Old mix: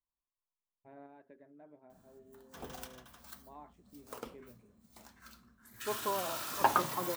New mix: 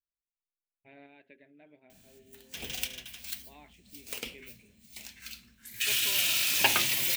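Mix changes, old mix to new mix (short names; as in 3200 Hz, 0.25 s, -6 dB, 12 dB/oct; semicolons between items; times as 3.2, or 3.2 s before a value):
second voice -9.5 dB; background: add low shelf 180 Hz +5.5 dB; master: add resonant high shelf 1700 Hz +13 dB, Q 3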